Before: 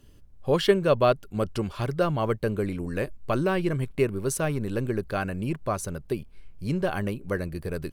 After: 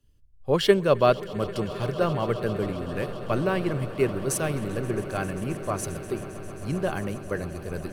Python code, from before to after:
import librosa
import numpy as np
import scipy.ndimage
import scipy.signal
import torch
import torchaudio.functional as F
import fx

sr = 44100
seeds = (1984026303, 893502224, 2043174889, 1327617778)

p1 = x + fx.echo_swell(x, sr, ms=133, loudest=8, wet_db=-17.5, dry=0)
p2 = fx.band_widen(p1, sr, depth_pct=40)
y = p2 * 10.0 ** (-1.0 / 20.0)